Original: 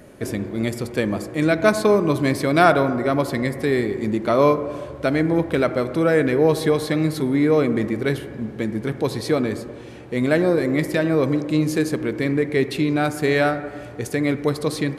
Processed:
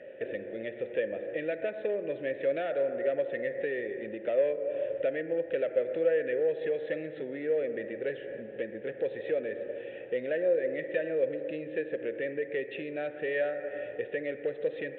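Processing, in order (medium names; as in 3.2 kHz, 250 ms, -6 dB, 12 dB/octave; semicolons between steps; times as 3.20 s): peaking EQ 270 Hz -2.5 dB; compression 3:1, threshold -29 dBFS, peak gain reduction 14.5 dB; overload inside the chain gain 22.5 dB; resampled via 8 kHz; vowel filter e; trim +8.5 dB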